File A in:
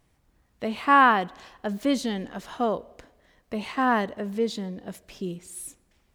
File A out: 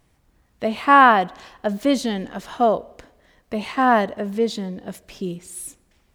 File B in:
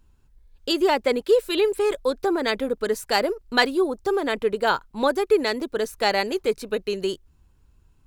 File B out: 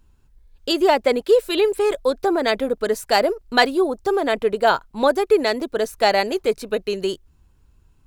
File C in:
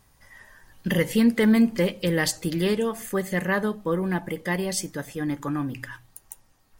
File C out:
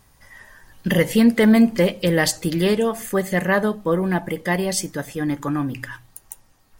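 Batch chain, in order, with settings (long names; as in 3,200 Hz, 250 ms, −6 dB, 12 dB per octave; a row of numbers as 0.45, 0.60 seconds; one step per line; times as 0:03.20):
dynamic equaliser 670 Hz, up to +7 dB, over −40 dBFS, Q 3.9
loudness normalisation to −20 LKFS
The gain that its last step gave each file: +4.5, +2.0, +4.5 decibels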